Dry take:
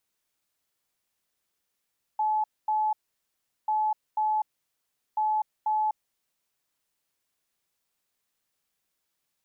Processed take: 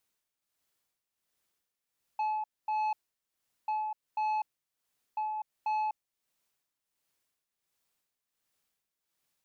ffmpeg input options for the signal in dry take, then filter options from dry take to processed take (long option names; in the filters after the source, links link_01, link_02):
-f lavfi -i "aevalsrc='0.075*sin(2*PI*859*t)*clip(min(mod(mod(t,1.49),0.49),0.25-mod(mod(t,1.49),0.49))/0.005,0,1)*lt(mod(t,1.49),0.98)':duration=4.47:sample_rate=44100"
-af "tremolo=f=1.4:d=0.65,asoftclip=type=tanh:threshold=-28dB"